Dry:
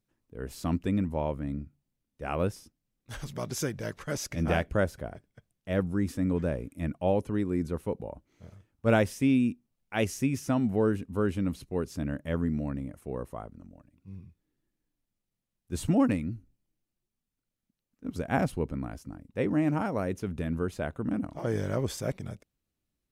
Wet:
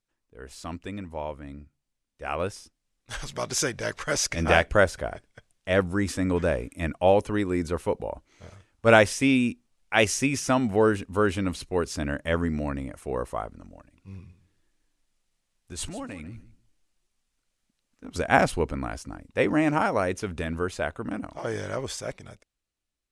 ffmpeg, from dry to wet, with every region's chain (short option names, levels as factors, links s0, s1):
-filter_complex "[0:a]asettb=1/sr,asplit=3[s0][s1][s2];[s0]atrim=end=14.154[s3];[s1]atrim=start=14.15:end=18.16,asetpts=PTS-STARTPTS,afade=t=in:d=0.004:c=qsin,afade=t=out:st=4.006:d=0.004:c=qsin,acompressor=threshold=0.0126:ratio=8:attack=3.2:release=140:knee=1:detection=peak,aecho=1:1:148|296:0.188|0.0339,atrim=end_sample=176841[s4];[s2]atrim=start=18.156[s5];[s3][s4]acrossfade=d=0.004:c1=hsin:c2=qsin[s6];[s6][s5]acrossfade=d=0.004:c1=qsin:c2=hsin,lowpass=f=10000:w=0.5412,lowpass=f=10000:w=1.3066,equalizer=f=160:w=0.42:g=-12.5,dynaudnorm=f=890:g=7:m=3.76,volume=1.19"